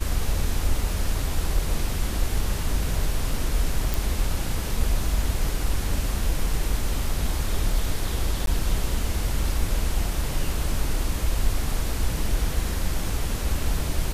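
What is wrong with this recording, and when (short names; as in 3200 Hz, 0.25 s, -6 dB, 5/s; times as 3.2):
3.94 pop
8.46–8.47 gap 12 ms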